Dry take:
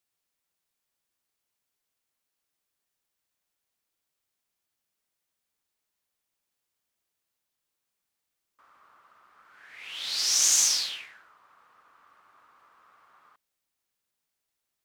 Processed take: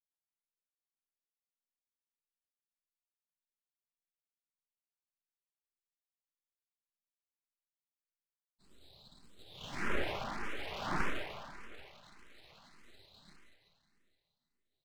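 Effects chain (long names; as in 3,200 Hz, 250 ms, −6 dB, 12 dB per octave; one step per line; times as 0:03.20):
downward expander −51 dBFS
comb filter 5 ms, depth 47%
reversed playback
downward compressor 12 to 1, threshold −32 dBFS, peak gain reduction 15.5 dB
reversed playback
voice inversion scrambler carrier 3,200 Hz
parametric band 150 Hz −12.5 dB 0.63 octaves
on a send: repeating echo 788 ms, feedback 44%, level −21 dB
on the sum: four-comb reverb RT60 2 s, combs from 29 ms, DRR 2 dB
full-wave rectification
frequency shifter mixed with the dry sound +1.7 Hz
level +12.5 dB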